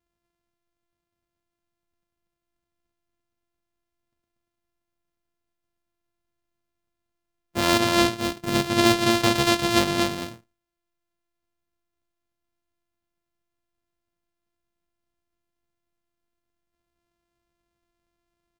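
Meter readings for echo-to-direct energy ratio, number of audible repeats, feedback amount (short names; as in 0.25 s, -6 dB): -4.0 dB, 1, no steady repeat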